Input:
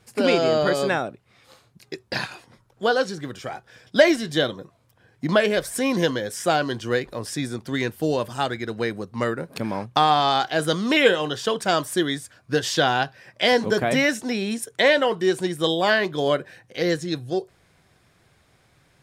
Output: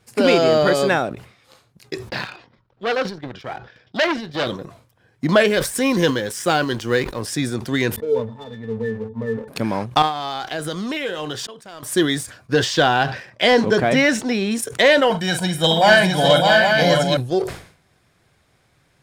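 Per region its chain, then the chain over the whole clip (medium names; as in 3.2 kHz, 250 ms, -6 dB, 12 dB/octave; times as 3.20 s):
2.09–4.47 s: low-pass 4.6 kHz 24 dB/octave + transient shaper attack -5 dB, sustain -10 dB + transformer saturation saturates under 2.8 kHz
5.47–7.22 s: companding laws mixed up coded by A + peaking EQ 660 Hz -8 dB 0.25 oct
7.96–9.48 s: peaking EQ 540 Hz +10 dB 2.6 oct + band-stop 840 Hz, Q 14 + pitch-class resonator A, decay 0.24 s
10.02–11.83 s: compression 5:1, threshold -28 dBFS + slow attack 772 ms
12.53–14.55 s: de-esser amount 35% + distance through air 61 m
15.10–17.17 s: comb 1.3 ms, depth 87% + multi-tap echo 44/309/607/661/813 ms -11.5/-19.5/-5/-6/-6.5 dB
whole clip: waveshaping leveller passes 1; decay stretcher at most 110 dB/s; trim +1 dB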